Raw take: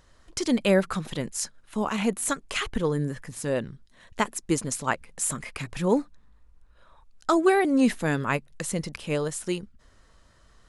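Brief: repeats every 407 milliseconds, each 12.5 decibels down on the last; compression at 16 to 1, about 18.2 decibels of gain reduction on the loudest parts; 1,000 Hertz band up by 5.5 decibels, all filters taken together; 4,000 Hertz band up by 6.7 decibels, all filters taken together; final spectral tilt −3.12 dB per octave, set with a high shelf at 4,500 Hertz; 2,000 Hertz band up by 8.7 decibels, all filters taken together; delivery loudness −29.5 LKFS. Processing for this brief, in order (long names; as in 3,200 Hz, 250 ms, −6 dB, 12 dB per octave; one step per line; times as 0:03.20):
parametric band 1,000 Hz +4.5 dB
parametric band 2,000 Hz +8 dB
parametric band 4,000 Hz +4 dB
high-shelf EQ 4,500 Hz +3 dB
downward compressor 16 to 1, threshold −31 dBFS
repeating echo 407 ms, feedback 24%, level −12.5 dB
level +6 dB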